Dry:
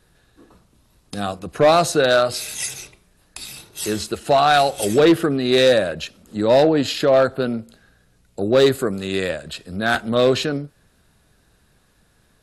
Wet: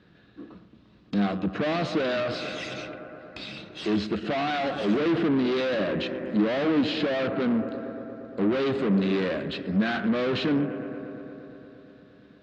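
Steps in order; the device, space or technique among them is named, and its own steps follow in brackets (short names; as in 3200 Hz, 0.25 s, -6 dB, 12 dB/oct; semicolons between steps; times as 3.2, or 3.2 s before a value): analogue delay pedal into a guitar amplifier (analogue delay 0.116 s, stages 2048, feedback 81%, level -20 dB; tube stage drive 29 dB, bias 0.5; speaker cabinet 89–3900 Hz, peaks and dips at 200 Hz +9 dB, 300 Hz +8 dB, 870 Hz -5 dB); gain +3.5 dB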